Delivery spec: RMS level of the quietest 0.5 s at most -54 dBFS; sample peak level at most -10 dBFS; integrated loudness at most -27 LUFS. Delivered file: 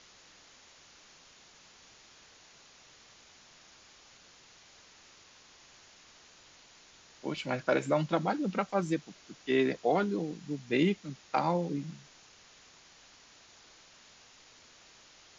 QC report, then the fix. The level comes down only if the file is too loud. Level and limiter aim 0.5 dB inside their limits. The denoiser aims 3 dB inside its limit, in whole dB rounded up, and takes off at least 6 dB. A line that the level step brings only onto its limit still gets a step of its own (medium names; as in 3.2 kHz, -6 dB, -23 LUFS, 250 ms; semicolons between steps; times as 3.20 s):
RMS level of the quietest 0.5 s -58 dBFS: pass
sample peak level -14.0 dBFS: pass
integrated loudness -31.5 LUFS: pass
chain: none needed